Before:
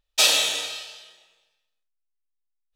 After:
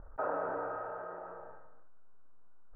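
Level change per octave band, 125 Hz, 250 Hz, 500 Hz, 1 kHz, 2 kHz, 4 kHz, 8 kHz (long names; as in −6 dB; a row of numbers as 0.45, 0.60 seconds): can't be measured, 0.0 dB, −1.0 dB, −1.0 dB, −18.0 dB, below −40 dB, below −40 dB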